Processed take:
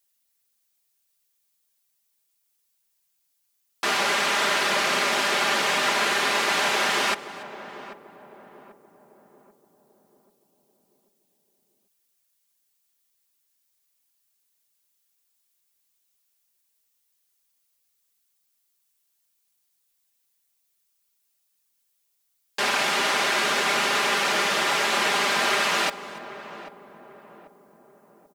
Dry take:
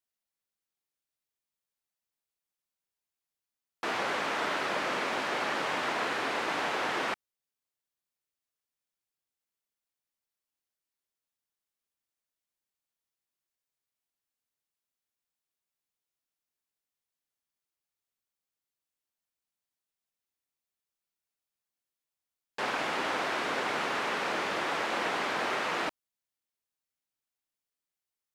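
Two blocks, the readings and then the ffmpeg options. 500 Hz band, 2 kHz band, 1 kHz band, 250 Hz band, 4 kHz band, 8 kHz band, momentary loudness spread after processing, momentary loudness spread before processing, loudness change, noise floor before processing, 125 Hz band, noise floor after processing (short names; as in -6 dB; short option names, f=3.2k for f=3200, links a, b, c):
+6.0 dB, +9.0 dB, +7.0 dB, +4.5 dB, +13.0 dB, +16.5 dB, 17 LU, 3 LU, +9.0 dB, under -85 dBFS, +6.0 dB, -73 dBFS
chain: -filter_complex "[0:a]highshelf=f=5.9k:g=-5,asplit=2[a][b];[b]aecho=0:1:286:0.0944[c];[a][c]amix=inputs=2:normalize=0,crystalizer=i=5:c=0,aecho=1:1:5:0.57,asplit=2[d][e];[e]adelay=789,lowpass=f=800:p=1,volume=-11dB,asplit=2[f][g];[g]adelay=789,lowpass=f=800:p=1,volume=0.54,asplit=2[h][i];[i]adelay=789,lowpass=f=800:p=1,volume=0.54,asplit=2[j][k];[k]adelay=789,lowpass=f=800:p=1,volume=0.54,asplit=2[l][m];[m]adelay=789,lowpass=f=800:p=1,volume=0.54,asplit=2[n][o];[o]adelay=789,lowpass=f=800:p=1,volume=0.54[p];[f][h][j][l][n][p]amix=inputs=6:normalize=0[q];[d][q]amix=inputs=2:normalize=0,volume=3.5dB"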